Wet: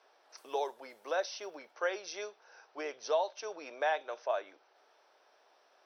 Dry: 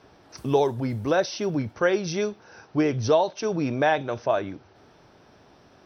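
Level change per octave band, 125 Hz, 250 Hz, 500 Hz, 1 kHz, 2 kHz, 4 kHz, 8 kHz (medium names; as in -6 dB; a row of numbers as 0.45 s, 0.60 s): under -40 dB, -26.5 dB, -12.0 dB, -9.0 dB, -9.0 dB, -9.0 dB, no reading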